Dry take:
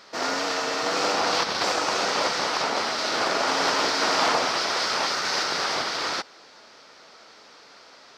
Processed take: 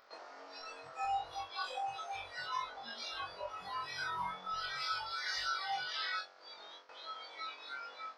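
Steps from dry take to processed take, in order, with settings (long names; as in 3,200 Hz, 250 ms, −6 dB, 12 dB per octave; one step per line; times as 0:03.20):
high-pass filter 680 Hz 12 dB per octave
noise gate with hold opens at −40 dBFS
high-frequency loss of the air 64 metres
soft clipping −15 dBFS, distortion −25 dB
in parallel at +0.5 dB: upward compression, threshold −29 dBFS
on the sum: tilt shelving filter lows +8 dB, about 1,300 Hz
on a send: flutter between parallel walls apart 3.7 metres, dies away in 0.53 s
on the sum: downward compressor 12 to 1, threshold −31 dBFS, peak gain reduction 20.5 dB
noise reduction from a noise print of the clip's start 23 dB
level +4.5 dB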